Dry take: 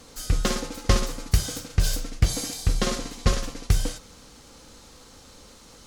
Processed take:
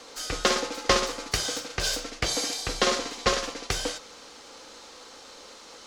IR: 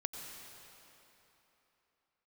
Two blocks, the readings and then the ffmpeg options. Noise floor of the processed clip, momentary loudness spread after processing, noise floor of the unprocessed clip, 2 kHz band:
−48 dBFS, 21 LU, −50 dBFS, +5.5 dB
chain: -filter_complex "[0:a]acrossover=split=320 6900:gain=0.0891 1 0.224[link_01][link_02][link_03];[link_01][link_02][link_03]amix=inputs=3:normalize=0,volume=5.5dB"

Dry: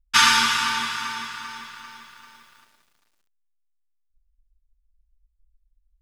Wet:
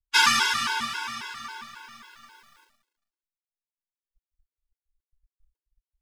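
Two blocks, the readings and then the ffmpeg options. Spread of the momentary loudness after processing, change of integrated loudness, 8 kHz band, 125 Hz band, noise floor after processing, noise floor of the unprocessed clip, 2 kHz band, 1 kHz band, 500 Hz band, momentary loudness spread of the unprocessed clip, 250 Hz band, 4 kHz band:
21 LU, −3.5 dB, −4.0 dB, −4.0 dB, below −85 dBFS, −70 dBFS, −2.5 dB, −3.5 dB, −3.0 dB, 21 LU, −4.5 dB, −3.5 dB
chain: -af "acrusher=bits=9:mode=log:mix=0:aa=0.000001,agate=range=-33dB:threshold=-54dB:ratio=3:detection=peak,afftfilt=real='re*gt(sin(2*PI*3.7*pts/sr)*(1-2*mod(floor(b*sr/1024/280),2)),0)':imag='im*gt(sin(2*PI*3.7*pts/sr)*(1-2*mod(floor(b*sr/1024/280),2)),0)':win_size=1024:overlap=0.75"

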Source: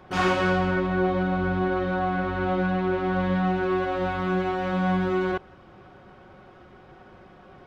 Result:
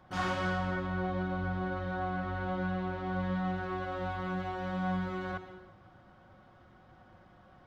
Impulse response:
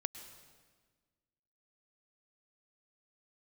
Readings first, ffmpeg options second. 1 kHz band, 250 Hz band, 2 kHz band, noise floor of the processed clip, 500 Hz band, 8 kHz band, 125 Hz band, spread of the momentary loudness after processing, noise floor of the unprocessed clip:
−9.0 dB, −10.0 dB, −9.0 dB, −59 dBFS, −12.5 dB, can't be measured, −7.5 dB, 4 LU, −50 dBFS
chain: -filter_complex "[0:a]equalizer=frequency=100:width_type=o:width=0.33:gain=6,equalizer=frequency=400:width_type=o:width=0.33:gain=-11,equalizer=frequency=2500:width_type=o:width=0.33:gain=-6[link_01];[1:a]atrim=start_sample=2205,afade=type=out:start_time=0.42:duration=0.01,atrim=end_sample=18963[link_02];[link_01][link_02]afir=irnorm=-1:irlink=0,volume=-7.5dB"

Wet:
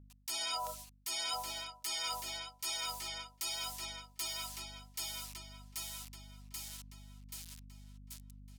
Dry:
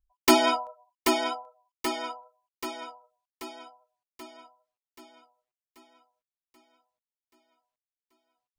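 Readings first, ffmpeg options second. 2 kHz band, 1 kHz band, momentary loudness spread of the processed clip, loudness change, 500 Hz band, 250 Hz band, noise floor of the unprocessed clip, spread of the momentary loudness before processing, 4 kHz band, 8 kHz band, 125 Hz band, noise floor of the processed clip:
−10.0 dB, −13.0 dB, 16 LU, −12.0 dB, −20.5 dB, −26.0 dB, below −85 dBFS, 22 LU, −3.0 dB, −1.0 dB, can't be measured, −64 dBFS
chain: -filter_complex "[0:a]acrusher=bits=10:mix=0:aa=0.000001,bandpass=frequency=6000:width_type=q:width=0.57:csg=0,aemphasis=mode=production:type=75kf,alimiter=level_in=2dB:limit=-24dB:level=0:latency=1,volume=-2dB,asplit=2[link_01][link_02];[link_02]adelay=1157,lowpass=frequency=3800:poles=1,volume=-15dB,asplit=2[link_03][link_04];[link_04]adelay=1157,lowpass=frequency=3800:poles=1,volume=0.18[link_05];[link_03][link_05]amix=inputs=2:normalize=0[link_06];[link_01][link_06]amix=inputs=2:normalize=0,aeval=exprs='val(0)+0.000447*(sin(2*PI*50*n/s)+sin(2*PI*2*50*n/s)/2+sin(2*PI*3*50*n/s)/3+sin(2*PI*4*50*n/s)/4+sin(2*PI*5*50*n/s)/5)':channel_layout=same,areverse,acompressor=threshold=-53dB:ratio=5,areverse,volume=15dB"

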